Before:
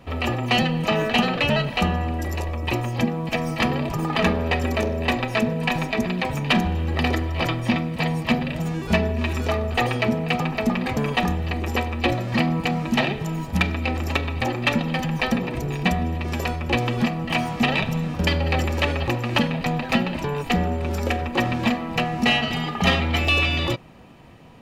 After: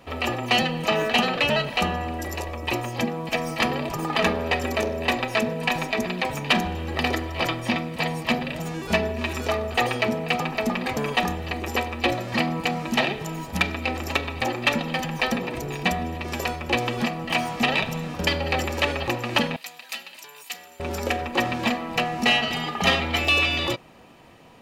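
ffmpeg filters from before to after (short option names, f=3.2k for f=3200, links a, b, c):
-filter_complex "[0:a]asettb=1/sr,asplit=3[a][b][c];[a]atrim=end=19.564[d];[b]atrim=start=19.56:end=20.8,asetpts=PTS-STARTPTS,afade=t=in:d=0.004:c=qsin,afade=t=out:st=1.236:d=0.004:c=qsin,aderivative[e];[c]atrim=start=20.796[f];[d][e]acrossfade=d=0.004:c1=hsin:c2=qsin[g];[g][f]acrossfade=d=0.004:c1=qsin:c2=hsin,bass=f=250:g=-8,treble=f=4k:g=3"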